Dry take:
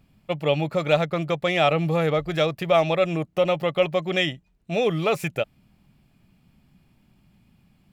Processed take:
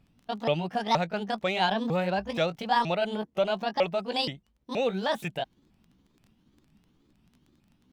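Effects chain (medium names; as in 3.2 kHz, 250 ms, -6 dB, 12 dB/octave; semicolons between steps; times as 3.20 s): sawtooth pitch modulation +7.5 st, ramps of 475 ms; crackle 15 per s -40 dBFS; treble shelf 9.4 kHz -7.5 dB; trim -4.5 dB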